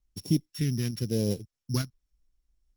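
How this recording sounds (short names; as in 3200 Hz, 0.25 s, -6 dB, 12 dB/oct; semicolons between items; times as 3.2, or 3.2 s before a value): a buzz of ramps at a fixed pitch in blocks of 8 samples; tremolo saw up 2.2 Hz, depth 45%; phasing stages 2, 0.94 Hz, lowest notch 530–1500 Hz; Opus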